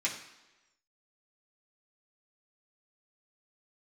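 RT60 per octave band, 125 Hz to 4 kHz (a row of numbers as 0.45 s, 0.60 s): 0.85 s, 1.0 s, 1.1 s, 1.1 s, 1.0 s, 1.0 s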